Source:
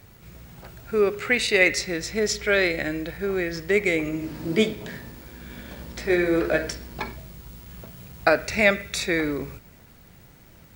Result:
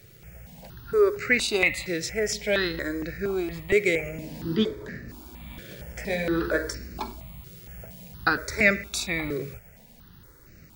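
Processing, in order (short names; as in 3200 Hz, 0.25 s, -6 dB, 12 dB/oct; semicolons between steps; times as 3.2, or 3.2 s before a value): 4.55–5.08 high shelf 6800 Hz -> 3500 Hz -12 dB; step phaser 4.3 Hz 240–3300 Hz; gain +1 dB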